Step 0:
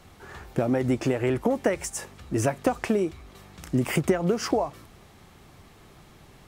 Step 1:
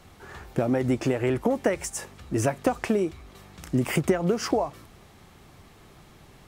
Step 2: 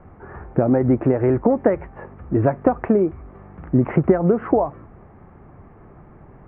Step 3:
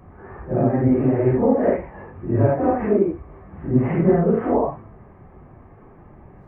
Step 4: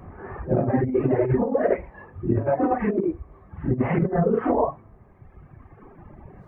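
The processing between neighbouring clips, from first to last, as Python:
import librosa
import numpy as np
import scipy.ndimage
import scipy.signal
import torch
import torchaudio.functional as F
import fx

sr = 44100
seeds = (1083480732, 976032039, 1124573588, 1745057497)

y1 = x
y2 = scipy.signal.sosfilt(scipy.signal.bessel(8, 1100.0, 'lowpass', norm='mag', fs=sr, output='sos'), y1)
y2 = y2 * 10.0 ** (7.5 / 20.0)
y3 = fx.phase_scramble(y2, sr, seeds[0], window_ms=200)
y3 = fx.notch(y3, sr, hz=1400.0, q=12.0)
y4 = fx.dereverb_blind(y3, sr, rt60_s=1.9)
y4 = fx.over_compress(y4, sr, threshold_db=-21.0, ratio=-0.5)
y4 = y4 * 10.0 ** (1.0 / 20.0)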